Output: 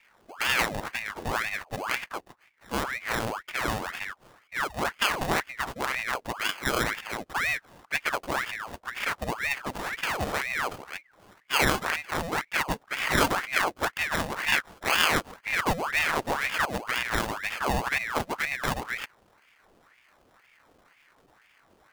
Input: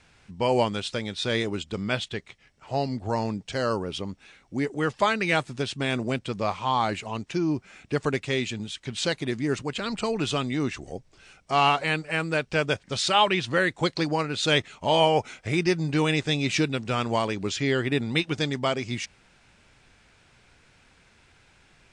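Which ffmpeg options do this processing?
-filter_complex "[0:a]asettb=1/sr,asplit=3[s0][s1][s2];[s0]atrim=end=1.194[s3];[s1]atrim=start=1.19:end=2.03,asetpts=PTS-STARTPTS,afade=t=in:d=0.004:c=qsin,afade=t=out:st=0.836:d=0.004:c=qsin,asuperstop=centerf=4800:order=4:qfactor=1.3[s4];[s2]atrim=start=2.026[s5];[s3][s4]acrossfade=d=0.004:c1=hsin:c2=qsin[s6];[s6][s5]acrossfade=d=0.004:c1=qsin:c2=hsin,acrusher=samples=24:mix=1:aa=0.000001,aeval=exprs='val(0)*sin(2*PI*1300*n/s+1300*0.75/2*sin(2*PI*2*n/s))':c=same"

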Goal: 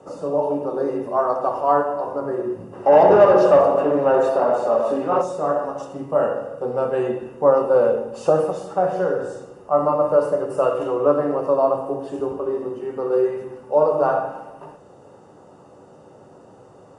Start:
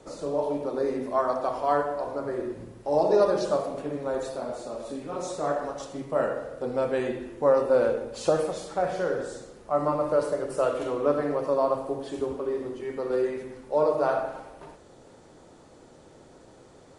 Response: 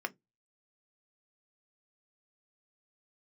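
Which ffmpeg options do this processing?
-filter_complex "[0:a]asplit=3[s0][s1][s2];[s0]afade=t=out:st=2.72:d=0.02[s3];[s1]asplit=2[s4][s5];[s5]highpass=f=720:p=1,volume=11.2,asoftclip=type=tanh:threshold=0.299[s6];[s4][s6]amix=inputs=2:normalize=0,lowpass=f=1700:p=1,volume=0.501,afade=t=in:st=2.72:d=0.02,afade=t=out:st=5.21:d=0.02[s7];[s2]afade=t=in:st=5.21:d=0.02[s8];[s3][s7][s8]amix=inputs=3:normalize=0[s9];[1:a]atrim=start_sample=2205,asetrate=22932,aresample=44100[s10];[s9][s10]afir=irnorm=-1:irlink=0,volume=0.75"

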